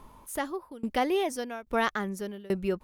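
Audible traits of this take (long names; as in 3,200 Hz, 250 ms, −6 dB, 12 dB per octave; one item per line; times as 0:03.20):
tremolo saw down 1.2 Hz, depth 95%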